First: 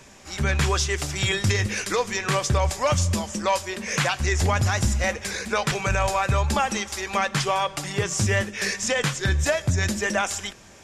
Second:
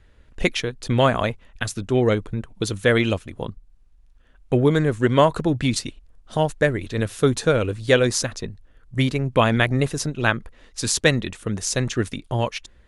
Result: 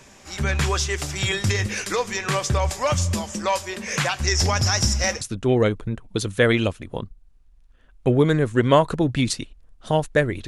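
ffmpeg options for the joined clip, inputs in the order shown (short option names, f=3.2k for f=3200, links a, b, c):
-filter_complex "[0:a]asettb=1/sr,asplit=3[a][b][c];[a]atrim=end=4.274[d];[b]atrim=start=4.27:end=5.21,asetpts=PTS-STARTPTS,afade=t=in:d=0.004:c=qsin,afade=t=out:st=0.936:d=0.004:c=qsin,equalizer=f=5.4k:w=3.7:g=15[e];[c]atrim=start=5.206[f];[d][e]acrossfade=d=0.004:c1=hsin:c2=qsin[g];[g][f]acrossfade=d=0.004:c1=qsin:c2=hsin,apad=whole_dur=10.47,atrim=end=10.47,atrim=end=5.212[h];[1:a]atrim=start=1.668:end=6.93[i];[h][i]acrossfade=d=0.004:c1=hsin:c2=hsin"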